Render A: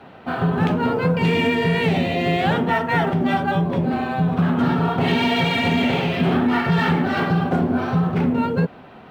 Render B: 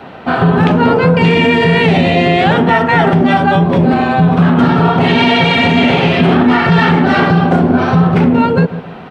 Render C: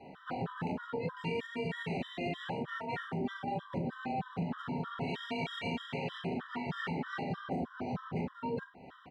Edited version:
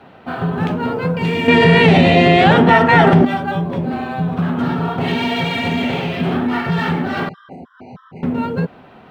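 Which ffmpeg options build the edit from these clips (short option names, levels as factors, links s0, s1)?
-filter_complex "[0:a]asplit=3[s0][s1][s2];[s0]atrim=end=1.482[s3];[1:a]atrim=start=1.478:end=3.252[s4];[s1]atrim=start=3.248:end=7.292[s5];[2:a]atrim=start=7.288:end=8.232[s6];[s2]atrim=start=8.228[s7];[s3][s4]acrossfade=d=0.004:c1=hsin:c2=hsin[s8];[s8][s5]acrossfade=d=0.004:c1=hsin:c2=hsin[s9];[s9][s6]acrossfade=d=0.004:c1=hsin:c2=hsin[s10];[s10][s7]acrossfade=d=0.004:c1=hsin:c2=hsin"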